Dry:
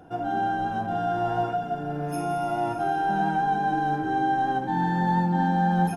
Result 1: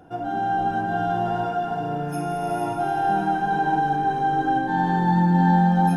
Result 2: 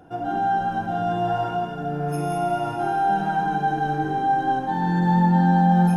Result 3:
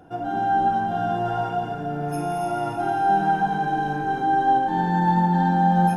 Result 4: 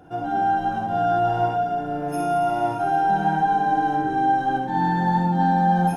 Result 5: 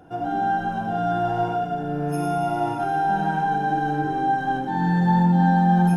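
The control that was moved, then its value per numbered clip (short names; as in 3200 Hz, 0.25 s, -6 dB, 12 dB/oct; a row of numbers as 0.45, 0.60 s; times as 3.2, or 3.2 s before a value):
non-linear reverb, gate: 490, 210, 310, 80, 130 ms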